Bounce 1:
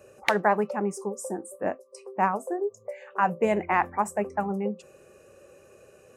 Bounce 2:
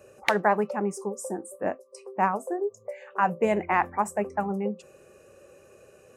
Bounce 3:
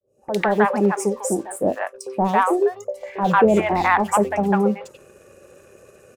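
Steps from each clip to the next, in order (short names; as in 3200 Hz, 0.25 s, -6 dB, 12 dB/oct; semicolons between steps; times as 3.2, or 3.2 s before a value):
nothing audible
opening faded in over 0.73 s; sample leveller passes 1; three bands offset in time lows, highs, mids 60/150 ms, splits 760/3400 Hz; gain +7 dB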